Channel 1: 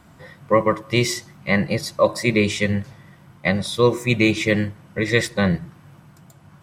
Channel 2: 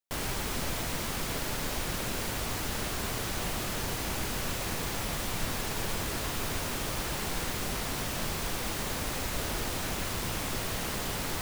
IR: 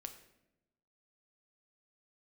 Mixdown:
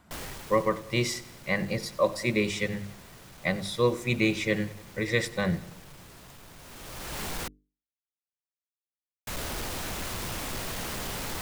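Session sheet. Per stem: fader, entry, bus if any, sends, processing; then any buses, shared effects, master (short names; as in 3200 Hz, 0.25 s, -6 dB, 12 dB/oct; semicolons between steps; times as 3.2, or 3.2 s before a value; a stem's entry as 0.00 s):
-7.5 dB, 0.00 s, no send, echo send -20 dB, dry
+1.5 dB, 0.00 s, muted 7.48–9.27, no send, no echo send, soft clip -29.5 dBFS, distortion -14 dB; auto duck -16 dB, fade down 0.80 s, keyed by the first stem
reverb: off
echo: feedback echo 95 ms, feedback 57%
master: notches 50/100/150/200/250/300/350/400/450 Hz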